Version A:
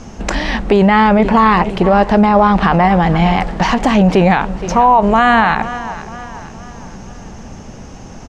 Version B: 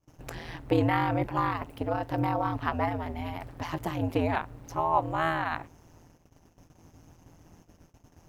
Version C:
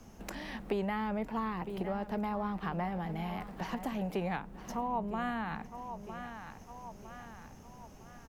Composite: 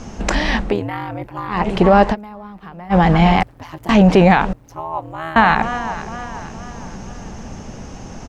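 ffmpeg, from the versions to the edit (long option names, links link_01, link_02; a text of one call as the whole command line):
ffmpeg -i take0.wav -i take1.wav -i take2.wav -filter_complex "[1:a]asplit=3[link_01][link_02][link_03];[0:a]asplit=5[link_04][link_05][link_06][link_07][link_08];[link_04]atrim=end=0.83[link_09];[link_01]atrim=start=0.59:end=1.71[link_10];[link_05]atrim=start=1.47:end=2.16[link_11];[2:a]atrim=start=2.1:end=2.95[link_12];[link_06]atrim=start=2.89:end=3.432[link_13];[link_02]atrim=start=3.428:end=3.892[link_14];[link_07]atrim=start=3.888:end=4.532[link_15];[link_03]atrim=start=4.528:end=5.362[link_16];[link_08]atrim=start=5.358[link_17];[link_09][link_10]acrossfade=duration=0.24:curve1=tri:curve2=tri[link_18];[link_18][link_11]acrossfade=duration=0.24:curve1=tri:curve2=tri[link_19];[link_19][link_12]acrossfade=duration=0.06:curve1=tri:curve2=tri[link_20];[link_20][link_13]acrossfade=duration=0.06:curve1=tri:curve2=tri[link_21];[link_21][link_14]acrossfade=duration=0.004:curve1=hsin:curve2=hsin[link_22];[link_22][link_15]acrossfade=duration=0.004:curve1=hsin:curve2=hsin[link_23];[link_23][link_16]acrossfade=duration=0.004:curve1=hsin:curve2=hsin[link_24];[link_24][link_17]acrossfade=duration=0.004:curve1=hsin:curve2=hsin" out.wav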